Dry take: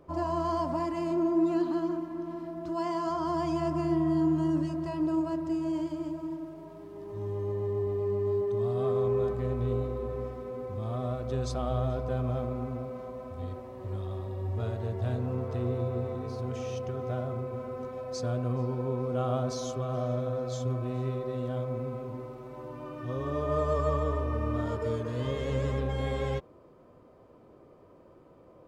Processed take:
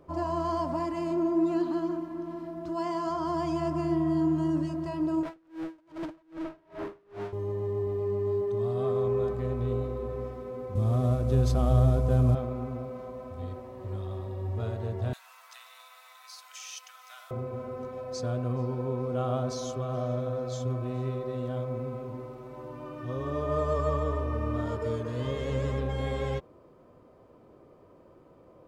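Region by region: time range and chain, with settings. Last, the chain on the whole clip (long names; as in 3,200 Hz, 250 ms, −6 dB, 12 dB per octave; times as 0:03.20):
0:05.23–0:07.33: hard clipping −38.5 dBFS + mid-hump overdrive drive 35 dB, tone 1,400 Hz, clips at −26 dBFS + tremolo with a sine in dB 2.5 Hz, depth 32 dB
0:10.75–0:12.35: variable-slope delta modulation 64 kbit/s + low-shelf EQ 310 Hz +11 dB
0:15.13–0:17.31: Bessel high-pass filter 1,500 Hz, order 8 + spectral tilt +4 dB per octave + upward compression, threshold −53 dBFS
whole clip: no processing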